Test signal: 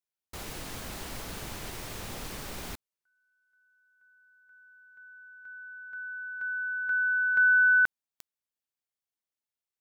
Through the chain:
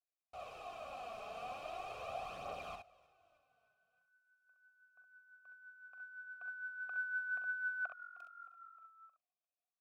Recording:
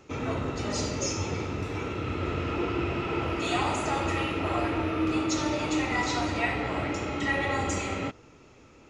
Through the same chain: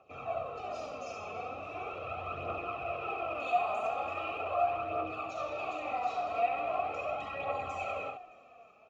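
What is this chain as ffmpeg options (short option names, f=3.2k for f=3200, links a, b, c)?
-filter_complex "[0:a]asplit=2[a][b];[b]asplit=4[c][d][e][f];[c]adelay=310,afreqshift=-45,volume=-24dB[g];[d]adelay=620,afreqshift=-90,volume=-28.9dB[h];[e]adelay=930,afreqshift=-135,volume=-33.8dB[i];[f]adelay=1240,afreqshift=-180,volume=-38.6dB[j];[g][h][i][j]amix=inputs=4:normalize=0[k];[a][k]amix=inputs=2:normalize=0,dynaudnorm=f=130:g=21:m=3.5dB,alimiter=limit=-20dB:level=0:latency=1:release=20,asplit=3[l][m][n];[l]bandpass=f=730:t=q:w=8,volume=0dB[o];[m]bandpass=f=1.09k:t=q:w=8,volume=-6dB[p];[n]bandpass=f=2.44k:t=q:w=8,volume=-9dB[q];[o][p][q]amix=inputs=3:normalize=0,lowshelf=f=150:g=8,aecho=1:1:1.6:0.43,asplit=2[r][s];[s]aecho=0:1:43|66:0.282|0.531[t];[r][t]amix=inputs=2:normalize=0,aphaser=in_gain=1:out_gain=1:delay=4.9:decay=0.43:speed=0.4:type=triangular,volume=1dB"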